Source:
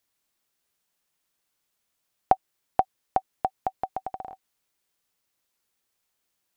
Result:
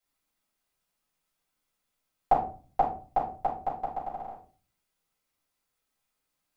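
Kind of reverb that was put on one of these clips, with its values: simulated room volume 260 m³, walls furnished, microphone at 6.8 m; trim -13.5 dB

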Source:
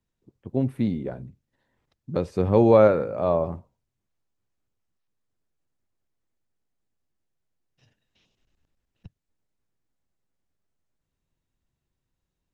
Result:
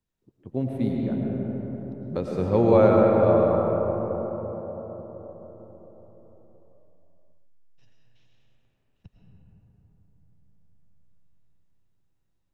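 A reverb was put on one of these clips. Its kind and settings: algorithmic reverb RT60 4.9 s, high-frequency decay 0.3×, pre-delay 70 ms, DRR -2 dB; trim -3.5 dB

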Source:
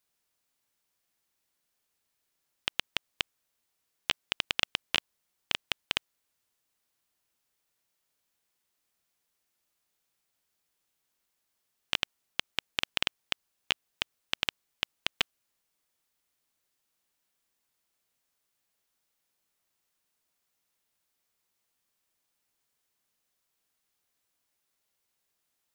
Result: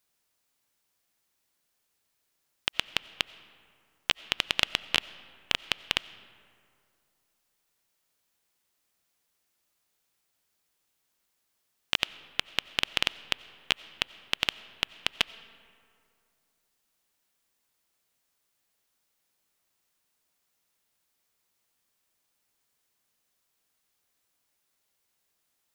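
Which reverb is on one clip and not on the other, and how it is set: algorithmic reverb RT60 2.4 s, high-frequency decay 0.5×, pre-delay 50 ms, DRR 17.5 dB; trim +3 dB

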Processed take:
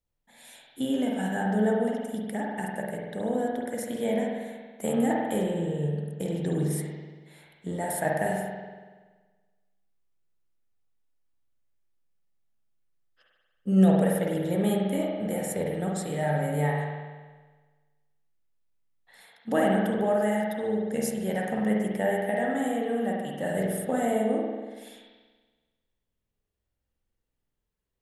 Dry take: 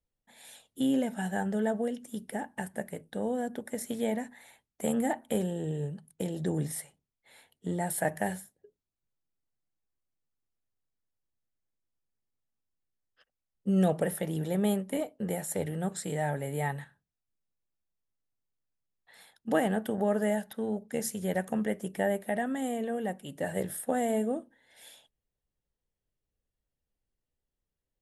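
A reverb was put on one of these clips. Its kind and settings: spring tank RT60 1.4 s, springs 47 ms, chirp 30 ms, DRR -2 dB

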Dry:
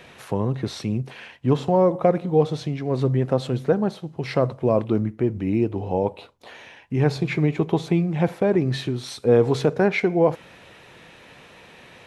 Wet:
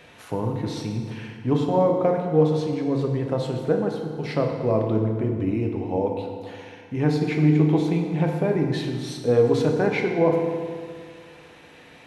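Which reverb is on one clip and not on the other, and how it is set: FDN reverb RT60 2 s, low-frequency decay 1.1×, high-frequency decay 0.7×, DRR 1.5 dB; trim -4 dB

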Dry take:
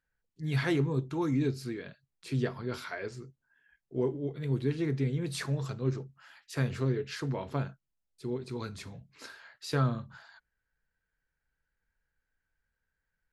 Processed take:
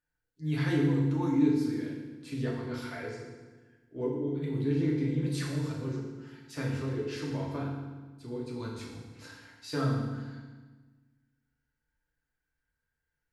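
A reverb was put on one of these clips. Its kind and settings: FDN reverb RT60 1.3 s, low-frequency decay 1.35×, high-frequency decay 0.85×, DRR -3.5 dB; trim -6.5 dB

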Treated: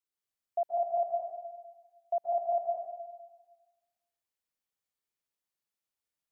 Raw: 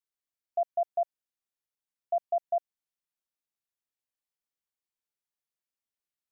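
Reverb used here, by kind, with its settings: plate-style reverb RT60 1.3 s, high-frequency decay 0.85×, pre-delay 115 ms, DRR -1.5 dB; trim -2.5 dB

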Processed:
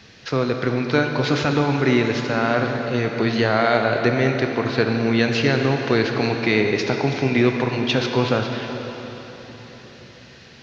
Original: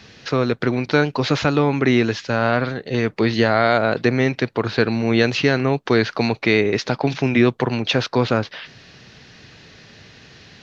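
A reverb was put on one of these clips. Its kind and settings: plate-style reverb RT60 4.2 s, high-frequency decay 0.9×, DRR 3 dB; trim -2.5 dB

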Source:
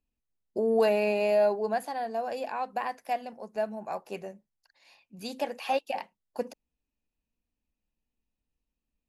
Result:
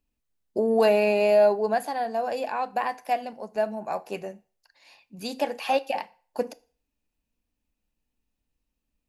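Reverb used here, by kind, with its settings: FDN reverb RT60 0.43 s, low-frequency decay 0.75×, high-frequency decay 0.95×, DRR 15 dB; trim +4.5 dB

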